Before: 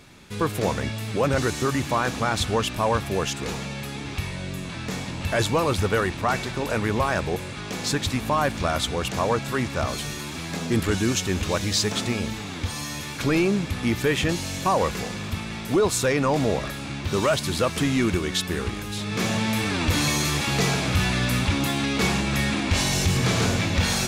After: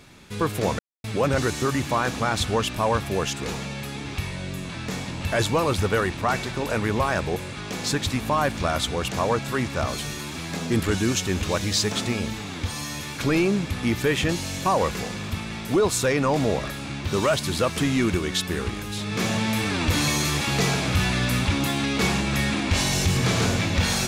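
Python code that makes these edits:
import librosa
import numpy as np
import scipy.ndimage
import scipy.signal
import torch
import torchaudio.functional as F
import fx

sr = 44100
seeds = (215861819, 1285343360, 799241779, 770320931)

y = fx.edit(x, sr, fx.silence(start_s=0.79, length_s=0.25), tone=tone)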